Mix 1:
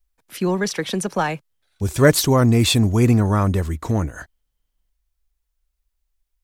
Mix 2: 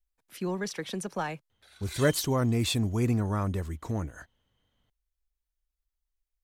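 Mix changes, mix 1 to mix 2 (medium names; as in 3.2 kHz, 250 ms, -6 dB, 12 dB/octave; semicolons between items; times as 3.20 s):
speech -11.0 dB; background +12.0 dB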